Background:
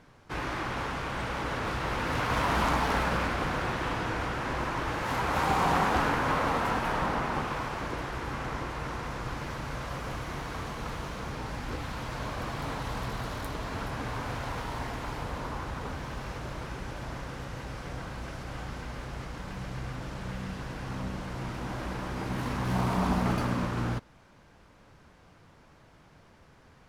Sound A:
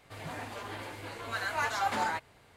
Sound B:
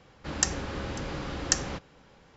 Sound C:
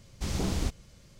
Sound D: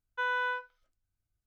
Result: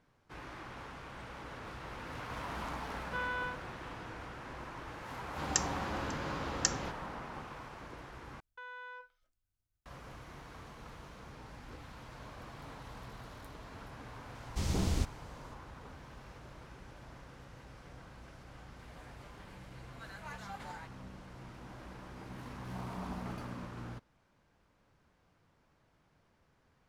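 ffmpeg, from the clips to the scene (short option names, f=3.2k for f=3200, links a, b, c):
-filter_complex "[4:a]asplit=2[a][b];[0:a]volume=-14dB[c];[2:a]highpass=51[d];[b]acompressor=threshold=-40dB:ratio=10:attack=0.72:release=21:knee=1:detection=peak[e];[3:a]equalizer=f=92:w=1.5:g=4.5[f];[c]asplit=2[g][h];[g]atrim=end=8.404[i];[e]atrim=end=1.46,asetpts=PTS-STARTPTS,volume=-3.5dB[j];[h]atrim=start=9.856[k];[a]atrim=end=1.46,asetpts=PTS-STARTPTS,volume=-6.5dB,afade=t=in:d=0.004:c=hsin,afade=t=out:st=1.456:d=0.004:c=hsin,adelay=2950[l];[d]atrim=end=2.36,asetpts=PTS-STARTPTS,volume=-5.5dB,afade=t=in:d=0.004:c=hsin,afade=t=out:st=2.356:d=0.004:c=hsin,adelay=226233S[m];[f]atrim=end=1.19,asetpts=PTS-STARTPTS,volume=-3.5dB,afade=t=in:d=0.004:c=hsin,afade=t=out:st=1.186:d=0.004:c=hsin,adelay=14350[n];[1:a]atrim=end=2.56,asetpts=PTS-STARTPTS,volume=-16dB,afade=t=in:d=0.004:c=hsin,afade=t=out:st=2.556:d=0.004:c=hsin,adelay=18680[o];[i][j]acrossfade=d=0.004:c1=hsin:c2=hsin[p];[p][k]acrossfade=d=0.004:c1=hsin:c2=hsin[q];[q][l][m][n][o]amix=inputs=5:normalize=0"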